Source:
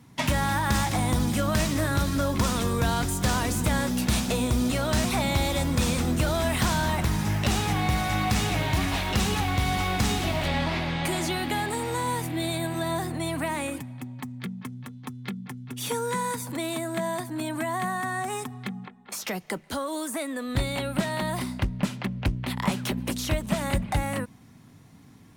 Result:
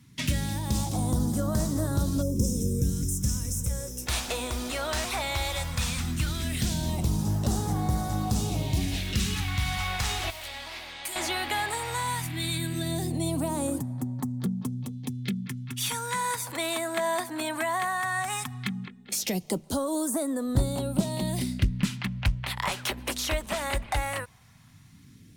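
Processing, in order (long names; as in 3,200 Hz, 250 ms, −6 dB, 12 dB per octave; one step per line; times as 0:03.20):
0:02.22–0:04.07: gain on a spectral selection 560–5,100 Hz −20 dB
speech leveller within 5 dB 0.5 s
0:10.30–0:11.16: first-order pre-emphasis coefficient 0.8
all-pass phaser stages 2, 0.16 Hz, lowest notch 150–2,400 Hz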